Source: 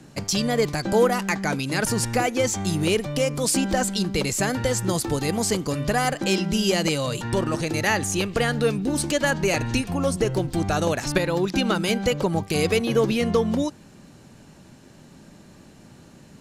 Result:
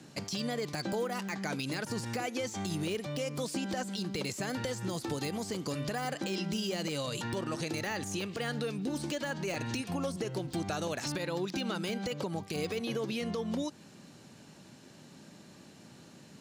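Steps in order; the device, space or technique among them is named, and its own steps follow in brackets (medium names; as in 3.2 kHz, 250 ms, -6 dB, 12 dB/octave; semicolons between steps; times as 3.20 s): broadcast voice chain (high-pass 120 Hz 12 dB/octave; de-esser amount 60%; compression 4:1, threshold -26 dBFS, peak gain reduction 10.5 dB; peaking EQ 4.2 kHz +4.5 dB 1.6 oct; peak limiter -19.5 dBFS, peak gain reduction 6.5 dB); trim -5 dB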